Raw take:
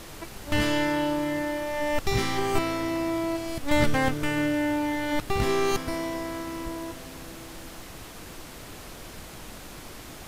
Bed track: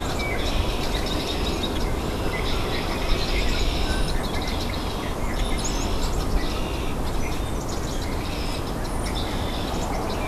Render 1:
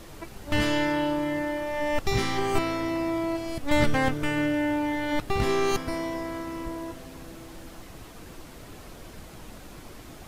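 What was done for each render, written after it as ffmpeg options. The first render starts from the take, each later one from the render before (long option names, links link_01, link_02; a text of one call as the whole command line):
ffmpeg -i in.wav -af "afftdn=noise_reduction=6:noise_floor=-43" out.wav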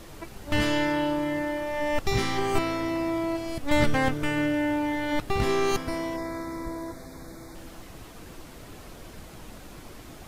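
ffmpeg -i in.wav -filter_complex "[0:a]asplit=3[link_01][link_02][link_03];[link_01]afade=type=out:start_time=6.16:duration=0.02[link_04];[link_02]asuperstop=centerf=2900:order=12:qfactor=2.6,afade=type=in:start_time=6.16:duration=0.02,afade=type=out:start_time=7.54:duration=0.02[link_05];[link_03]afade=type=in:start_time=7.54:duration=0.02[link_06];[link_04][link_05][link_06]amix=inputs=3:normalize=0" out.wav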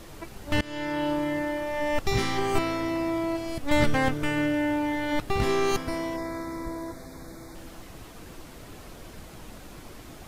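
ffmpeg -i in.wav -filter_complex "[0:a]asplit=2[link_01][link_02];[link_01]atrim=end=0.61,asetpts=PTS-STARTPTS,afade=type=out:start_time=0.606:duration=0.004:curve=hsin:silence=0.0707946[link_03];[link_02]atrim=start=0.61,asetpts=PTS-STARTPTS,afade=type=in:duration=0.5:silence=0.0707946[link_04];[link_03][link_04]concat=n=2:v=0:a=1" out.wav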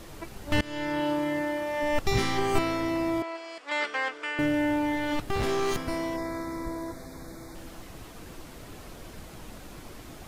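ffmpeg -i in.wav -filter_complex "[0:a]asettb=1/sr,asplit=3[link_01][link_02][link_03];[link_01]atrim=end=1.004[link_04];[link_02]atrim=start=1:end=1.83,asetpts=PTS-STARTPTS,afade=type=in:duration=0.004:curve=qsin,afade=type=out:start_time=0.826:duration=0.004:curve=qsin,highpass=frequency=130:poles=1[link_05];[link_03]atrim=start=1.826[link_06];[link_04][link_05]acrossfade=duration=0.004:curve1=hsin:curve2=qsin[link_07];[link_07][link_06]acrossfade=duration=0.004:curve1=qsin:curve2=hsin,asettb=1/sr,asplit=3[link_08][link_09][link_10];[link_08]atrim=end=3.224[link_11];[link_09]atrim=start=3.22:end=4.39,asetpts=PTS-STARTPTS,afade=type=in:duration=0.004:curve=qsin,afade=type=out:start_time=1.166:duration=0.004:curve=qsin,highpass=frequency=490:width=0.5412,highpass=frequency=490:width=1.3066,equalizer=frequency=570:width_type=q:width=4:gain=-8,equalizer=frequency=800:width_type=q:width=4:gain=-6,equalizer=frequency=3800:width_type=q:width=4:gain=-5,equalizer=frequency=6100:width_type=q:width=4:gain=-8,lowpass=frequency=6800:width=0.5412,lowpass=frequency=6800:width=1.3066[link_12];[link_10]atrim=start=4.386[link_13];[link_11][link_12]acrossfade=duration=0.004:curve1=hsin:curve2=qsin[link_14];[link_14][link_13]acrossfade=duration=0.004:curve1=qsin:curve2=hsin,asettb=1/sr,asplit=3[link_15][link_16][link_17];[link_15]atrim=end=4.974[link_18];[link_16]atrim=start=4.97:end=6.15,asetpts=PTS-STARTPTS,afade=type=in:duration=0.004:curve=qsin,afade=type=out:start_time=1.176:duration=0.004:curve=qsin,asoftclip=type=hard:threshold=-23.5dB[link_19];[link_17]atrim=start=6.146[link_20];[link_18][link_19]acrossfade=duration=0.004:curve1=hsin:curve2=qsin[link_21];[link_21][link_20]acrossfade=duration=0.004:curve1=qsin:curve2=hsin" out.wav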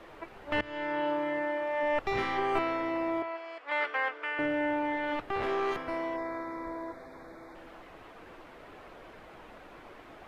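ffmpeg -i in.wav -filter_complex "[0:a]acrossover=split=360 2900:gain=0.2 1 0.0794[link_01][link_02][link_03];[link_01][link_02][link_03]amix=inputs=3:normalize=0,bandreject=frequency=60:width_type=h:width=6,bandreject=frequency=120:width_type=h:width=6" out.wav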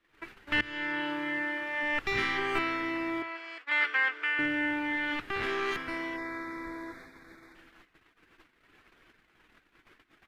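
ffmpeg -i in.wav -af "agate=range=-25dB:threshold=-47dB:ratio=16:detection=peak,firequalizer=gain_entry='entry(330,0);entry(570,-11);entry(1600,6)':delay=0.05:min_phase=1" out.wav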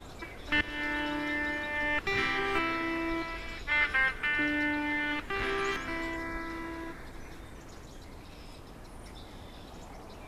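ffmpeg -i in.wav -i bed.wav -filter_complex "[1:a]volume=-20.5dB[link_01];[0:a][link_01]amix=inputs=2:normalize=0" out.wav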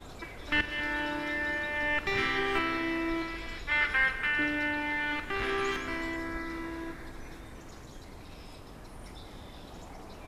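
ffmpeg -i in.wav -filter_complex "[0:a]asplit=2[link_01][link_02];[link_02]adelay=46,volume=-13dB[link_03];[link_01][link_03]amix=inputs=2:normalize=0,aecho=1:1:194:0.224" out.wav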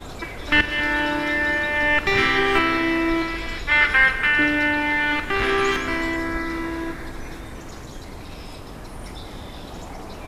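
ffmpeg -i in.wav -af "volume=10.5dB" out.wav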